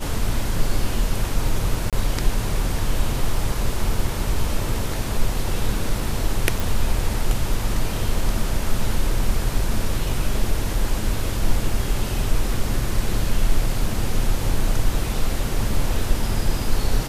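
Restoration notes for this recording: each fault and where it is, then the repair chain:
0:01.90–0:01.93: drop-out 27 ms
0:06.60: click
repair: click removal
repair the gap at 0:01.90, 27 ms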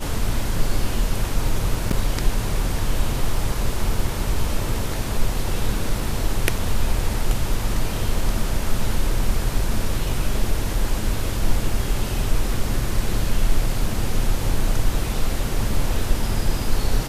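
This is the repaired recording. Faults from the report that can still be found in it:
none of them is left

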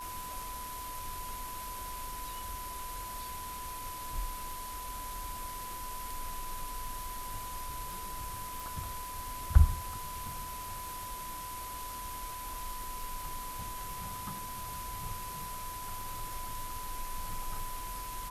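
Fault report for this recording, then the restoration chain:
surface crackle 32 per second −41 dBFS
whistle 1,000 Hz −41 dBFS
0:08.60: click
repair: click removal
notch filter 1,000 Hz, Q 30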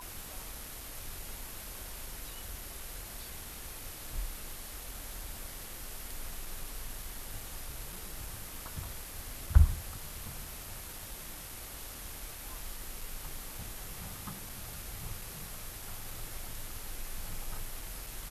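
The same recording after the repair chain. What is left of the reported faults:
none of them is left

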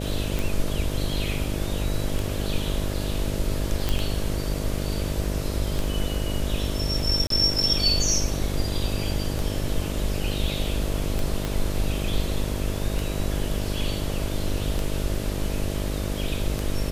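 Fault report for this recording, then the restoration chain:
mains buzz 50 Hz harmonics 13 −29 dBFS
scratch tick 33 1/3 rpm
0:03.89: click −10 dBFS
0:07.27–0:07.30: drop-out 33 ms
0:11.45: click −13 dBFS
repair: click removal
hum removal 50 Hz, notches 13
repair the gap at 0:07.27, 33 ms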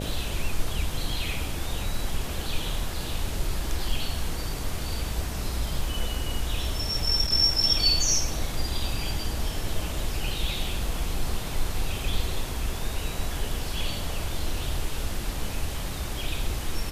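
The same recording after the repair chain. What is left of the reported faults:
0:11.45: click

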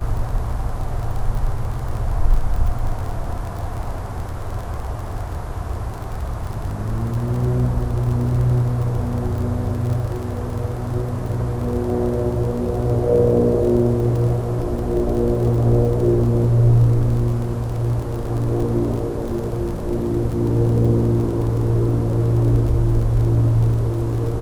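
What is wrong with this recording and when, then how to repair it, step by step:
surface crackle 31 per second −26 dBFS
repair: click removal

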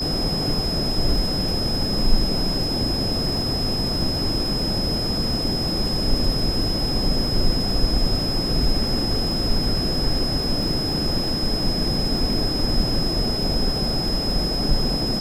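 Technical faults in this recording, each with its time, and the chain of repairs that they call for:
surface crackle 46 per second −29 dBFS
whistle 5,100 Hz −25 dBFS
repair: click removal
notch filter 5,100 Hz, Q 30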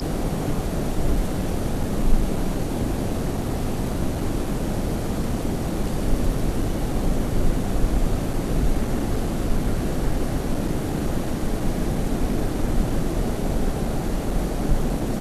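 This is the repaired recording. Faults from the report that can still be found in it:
none of them is left

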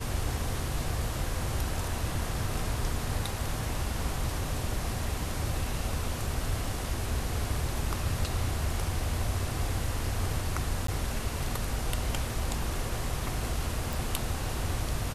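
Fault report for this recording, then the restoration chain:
0:10.87–0:10.88: drop-out 13 ms
0:13.93: click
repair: click removal
repair the gap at 0:10.87, 13 ms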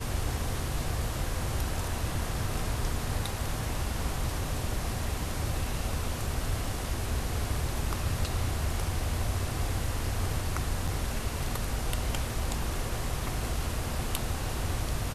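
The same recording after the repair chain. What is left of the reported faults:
none of them is left

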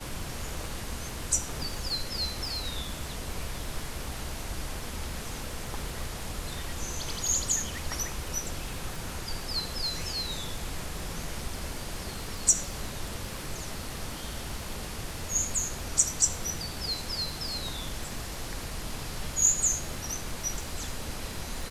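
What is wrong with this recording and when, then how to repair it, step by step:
surface crackle 57 per second −37 dBFS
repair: click removal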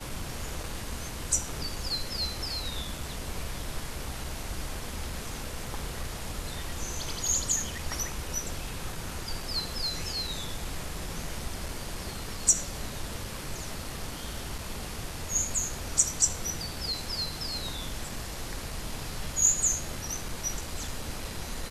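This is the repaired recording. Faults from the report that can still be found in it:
none of them is left

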